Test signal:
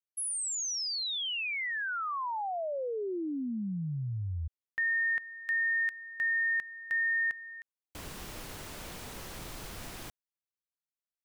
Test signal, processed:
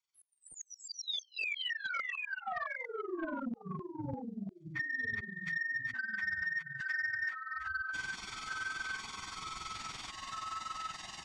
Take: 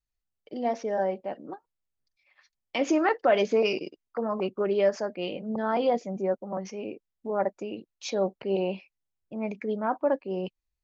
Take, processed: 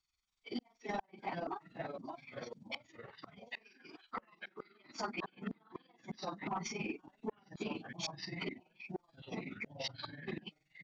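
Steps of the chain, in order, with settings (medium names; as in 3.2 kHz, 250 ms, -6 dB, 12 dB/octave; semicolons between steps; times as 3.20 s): phase randomisation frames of 50 ms; comb 0.9 ms, depth 88%; inverted gate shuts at -22 dBFS, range -40 dB; tilt EQ +4 dB/octave; ever faster or slower copies 285 ms, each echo -3 st, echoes 3, each echo -6 dB; AM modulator 21 Hz, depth 50%; compression 2:1, threshold -41 dBFS; short-mantissa float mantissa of 6-bit; saturation -34 dBFS; Bessel low-pass 4.4 kHz, order 6; bass shelf 66 Hz +6.5 dB; trim +5.5 dB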